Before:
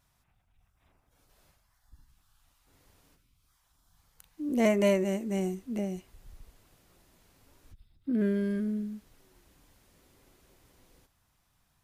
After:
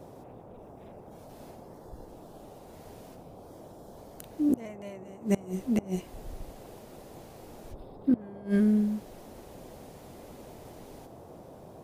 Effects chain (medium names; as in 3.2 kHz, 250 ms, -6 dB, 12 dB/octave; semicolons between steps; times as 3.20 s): inverted gate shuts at -23 dBFS, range -27 dB; band noise 76–740 Hz -57 dBFS; trim +8.5 dB